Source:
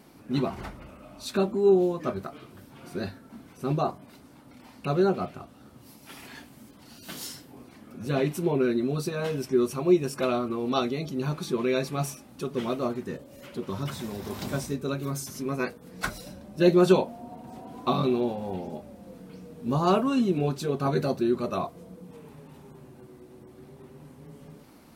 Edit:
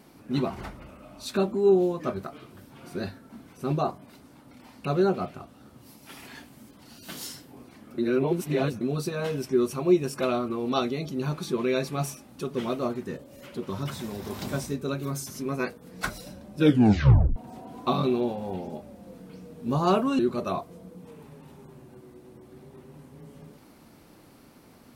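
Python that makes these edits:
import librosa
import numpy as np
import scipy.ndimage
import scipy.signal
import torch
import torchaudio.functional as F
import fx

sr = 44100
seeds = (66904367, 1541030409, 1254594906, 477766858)

y = fx.edit(x, sr, fx.reverse_span(start_s=7.98, length_s=0.83),
    fx.tape_stop(start_s=16.56, length_s=0.8),
    fx.cut(start_s=20.19, length_s=1.06), tone=tone)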